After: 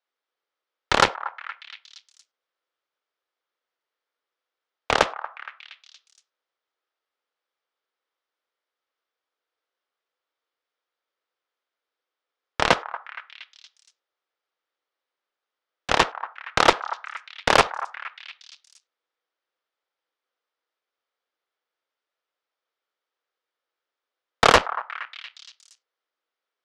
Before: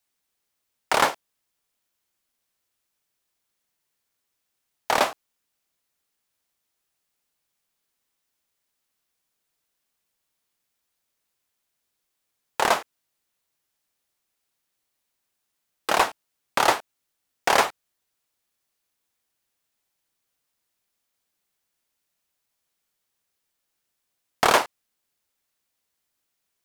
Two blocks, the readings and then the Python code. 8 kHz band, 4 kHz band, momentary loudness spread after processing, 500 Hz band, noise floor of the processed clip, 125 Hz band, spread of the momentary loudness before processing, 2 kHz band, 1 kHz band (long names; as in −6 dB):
−1.5 dB, +4.0 dB, 20 LU, +2.5 dB, below −85 dBFS, +9.0 dB, 10 LU, +3.0 dB, +1.5 dB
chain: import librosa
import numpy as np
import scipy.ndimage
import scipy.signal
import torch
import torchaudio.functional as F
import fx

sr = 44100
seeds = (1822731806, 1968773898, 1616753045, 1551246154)

y = fx.cabinet(x, sr, low_hz=330.0, low_slope=24, high_hz=4400.0, hz=(500.0, 1300.0, 2600.0, 4200.0), db=(6, 5, -4, -4))
y = fx.cheby_harmonics(y, sr, harmonics=(7,), levels_db=(-13,), full_scale_db=-2.5)
y = fx.echo_stepped(y, sr, ms=234, hz=1100.0, octaves=0.7, feedback_pct=70, wet_db=-11)
y = y * librosa.db_to_amplitude(2.5)